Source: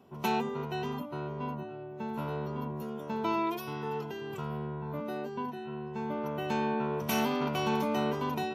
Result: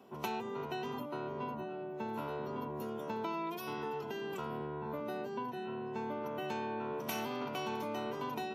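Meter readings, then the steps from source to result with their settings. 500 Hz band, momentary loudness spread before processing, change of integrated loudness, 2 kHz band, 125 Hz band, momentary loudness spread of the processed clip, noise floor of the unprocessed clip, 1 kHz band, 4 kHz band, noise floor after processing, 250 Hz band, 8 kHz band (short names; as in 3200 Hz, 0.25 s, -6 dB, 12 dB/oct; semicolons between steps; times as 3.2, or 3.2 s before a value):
-4.5 dB, 8 LU, -5.5 dB, -5.0 dB, -10.0 dB, 3 LU, -42 dBFS, -5.0 dB, -5.5 dB, -43 dBFS, -7.5 dB, -6.0 dB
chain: octaver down 1 oct, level -2 dB; HPF 250 Hz 12 dB/oct; compressor 5:1, threshold -38 dBFS, peak gain reduction 11 dB; gain +2 dB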